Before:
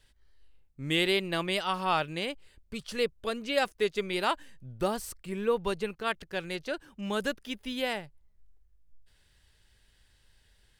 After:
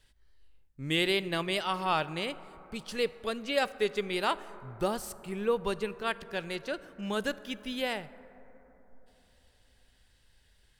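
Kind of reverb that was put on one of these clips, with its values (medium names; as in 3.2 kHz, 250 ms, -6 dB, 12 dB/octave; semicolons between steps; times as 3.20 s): plate-style reverb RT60 3.9 s, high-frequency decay 0.25×, DRR 15.5 dB; trim -1 dB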